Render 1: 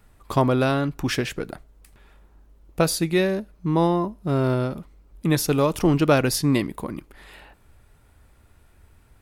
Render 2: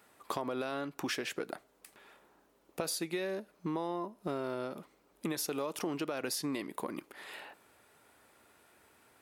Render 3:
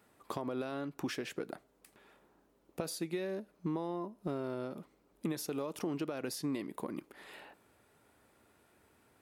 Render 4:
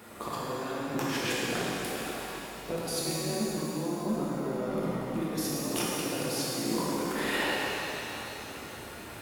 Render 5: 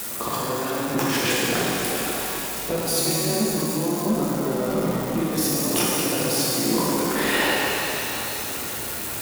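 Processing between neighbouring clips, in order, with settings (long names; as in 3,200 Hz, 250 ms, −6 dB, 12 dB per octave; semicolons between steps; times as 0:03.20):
high-pass filter 330 Hz 12 dB per octave; brickwall limiter −14.5 dBFS, peak gain reduction 9.5 dB; downward compressor 6 to 1, threshold −33 dBFS, peak gain reduction 12.5 dB
low-shelf EQ 410 Hz +9.5 dB; level −6 dB
echo ahead of the sound 95 ms −17 dB; compressor whose output falls as the input rises −48 dBFS, ratio −1; reverb with rising layers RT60 3.4 s, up +7 semitones, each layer −8 dB, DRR −6.5 dB; level +8 dB
spike at every zero crossing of −31.5 dBFS; level +8 dB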